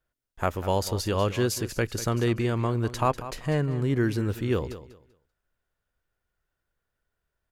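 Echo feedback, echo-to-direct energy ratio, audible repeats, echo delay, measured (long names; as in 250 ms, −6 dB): 23%, −13.5 dB, 2, 194 ms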